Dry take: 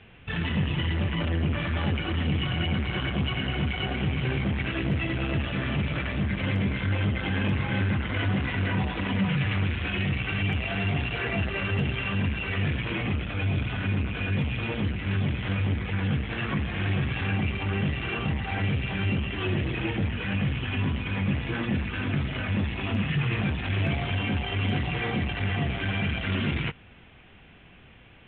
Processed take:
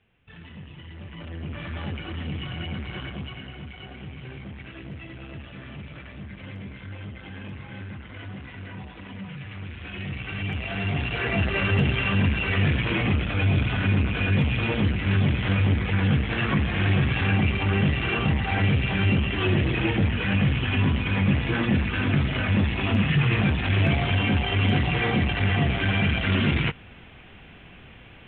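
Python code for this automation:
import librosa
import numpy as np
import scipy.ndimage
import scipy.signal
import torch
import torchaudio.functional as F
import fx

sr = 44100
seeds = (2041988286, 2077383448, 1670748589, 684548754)

y = fx.gain(x, sr, db=fx.line((0.83, -16.0), (1.68, -5.5), (3.0, -5.5), (3.58, -12.0), (9.5, -12.0), (10.1, -5.5), (11.58, 5.0)))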